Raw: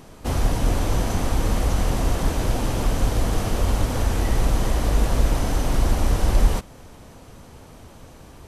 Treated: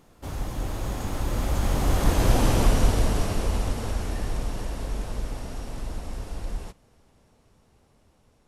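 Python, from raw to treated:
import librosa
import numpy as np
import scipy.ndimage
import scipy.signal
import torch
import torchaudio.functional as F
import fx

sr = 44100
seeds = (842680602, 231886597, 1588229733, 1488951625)

y = fx.doppler_pass(x, sr, speed_mps=31, closest_m=15.0, pass_at_s=2.46)
y = y * librosa.db_to_amplitude(3.0)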